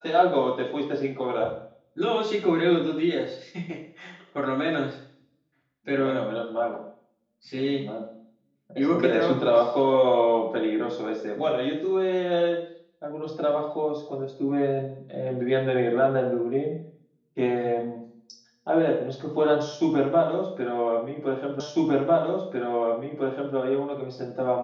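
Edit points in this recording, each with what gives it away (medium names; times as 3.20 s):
21.60 s: repeat of the last 1.95 s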